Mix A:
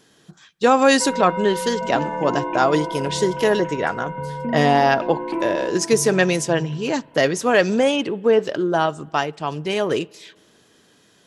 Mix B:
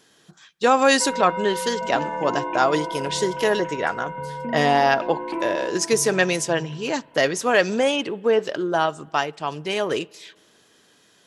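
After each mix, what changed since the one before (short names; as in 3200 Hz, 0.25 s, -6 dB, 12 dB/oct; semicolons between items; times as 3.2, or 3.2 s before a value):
master: add low shelf 380 Hz -7 dB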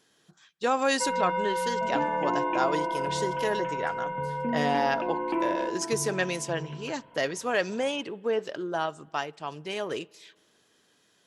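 speech -8.5 dB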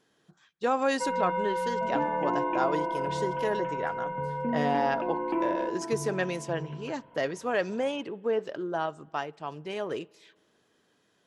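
master: add high shelf 2400 Hz -9.5 dB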